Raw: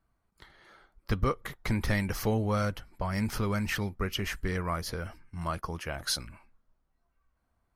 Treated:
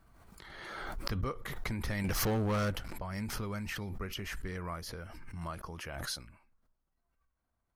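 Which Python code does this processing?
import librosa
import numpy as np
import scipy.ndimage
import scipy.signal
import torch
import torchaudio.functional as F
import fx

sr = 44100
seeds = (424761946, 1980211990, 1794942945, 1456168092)

y = fx.leveller(x, sr, passes=3, at=(2.04, 2.93))
y = fx.pre_swell(y, sr, db_per_s=28.0)
y = F.gain(torch.from_numpy(y), -8.5).numpy()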